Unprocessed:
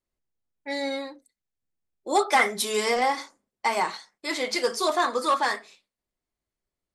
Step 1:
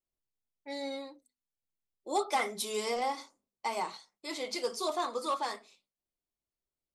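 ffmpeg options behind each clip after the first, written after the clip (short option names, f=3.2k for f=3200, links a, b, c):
-af "equalizer=f=1.7k:w=2.8:g=-10.5,bandreject=f=50:t=h:w=6,bandreject=f=100:t=h:w=6,bandreject=f=150:t=h:w=6,bandreject=f=200:t=h:w=6,bandreject=f=250:t=h:w=6,volume=-8dB"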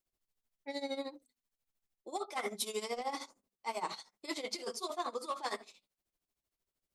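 -af "areverse,acompressor=threshold=-39dB:ratio=6,areverse,tremolo=f=13:d=0.81,volume=7dB"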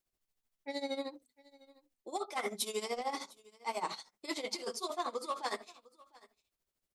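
-af "aecho=1:1:703:0.0708,volume=1dB"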